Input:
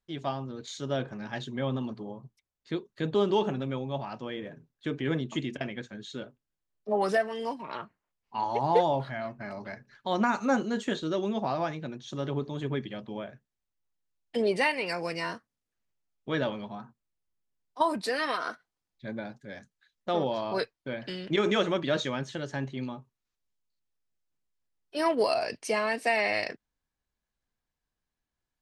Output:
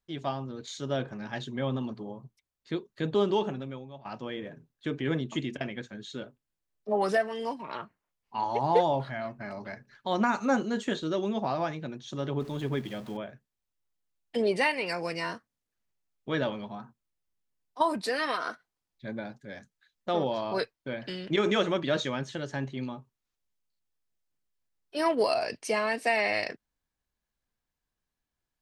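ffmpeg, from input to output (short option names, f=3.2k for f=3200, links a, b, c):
-filter_complex "[0:a]asettb=1/sr,asplit=3[a][b][c];[a]atrim=end=12.404[d];[b]atrim=start=12.4:end=13.17,asetpts=PTS-STARTPTS,afade=t=in:d=0.004:c=qsin,afade=t=out:st=0.766:d=0.004:c=qsin,aeval=exprs='val(0)+0.5*0.00562*sgn(val(0))':c=same[e];[c]atrim=start=13.166[f];[d][e]acrossfade=d=0.004:c1=hsin:c2=qsin[g];[g][f]acrossfade=d=0.004:c1=qsin:c2=hsin,asplit=2[h][i];[h]atrim=end=4.05,asetpts=PTS-STARTPTS,afade=t=out:st=3.24:d=0.81:silence=0.112202[j];[i]atrim=start=4.05,asetpts=PTS-STARTPTS,afade=t=in:d=0.004:c=hsin:silence=0.112202[k];[j][k]concat=n=2:v=0:a=1"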